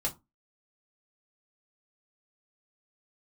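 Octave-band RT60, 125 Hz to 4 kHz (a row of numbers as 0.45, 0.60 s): 0.30, 0.30, 0.25, 0.25, 0.15, 0.15 s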